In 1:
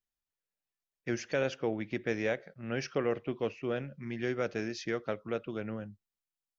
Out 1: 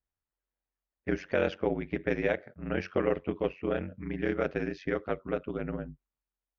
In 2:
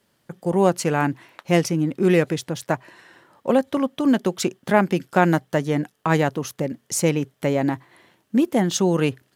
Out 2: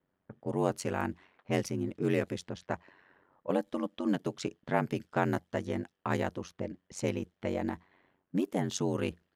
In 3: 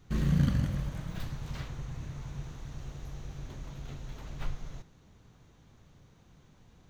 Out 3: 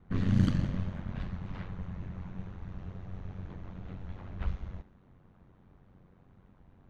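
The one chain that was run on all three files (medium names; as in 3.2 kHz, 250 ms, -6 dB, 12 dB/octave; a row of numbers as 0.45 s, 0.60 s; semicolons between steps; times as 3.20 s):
ring modulator 46 Hz; level-controlled noise filter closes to 1.6 kHz, open at -19 dBFS; peak normalisation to -12 dBFS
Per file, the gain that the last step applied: +6.0 dB, -9.0 dB, +3.0 dB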